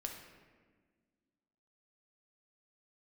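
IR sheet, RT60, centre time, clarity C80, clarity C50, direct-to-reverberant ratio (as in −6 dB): 1.5 s, 41 ms, 7.0 dB, 4.5 dB, 1.5 dB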